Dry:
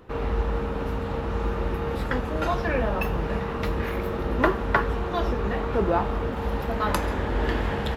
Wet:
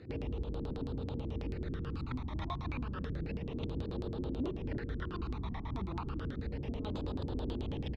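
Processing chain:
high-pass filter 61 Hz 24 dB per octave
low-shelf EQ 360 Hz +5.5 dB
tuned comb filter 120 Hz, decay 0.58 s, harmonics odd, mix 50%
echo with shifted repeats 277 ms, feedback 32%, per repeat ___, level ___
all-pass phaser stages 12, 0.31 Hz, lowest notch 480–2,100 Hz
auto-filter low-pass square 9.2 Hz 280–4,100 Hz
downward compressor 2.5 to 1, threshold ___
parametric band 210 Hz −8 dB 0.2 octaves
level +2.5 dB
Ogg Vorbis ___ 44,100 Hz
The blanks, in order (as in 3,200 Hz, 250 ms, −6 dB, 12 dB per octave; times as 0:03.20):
−42 Hz, −10.5 dB, −42 dBFS, 192 kbit/s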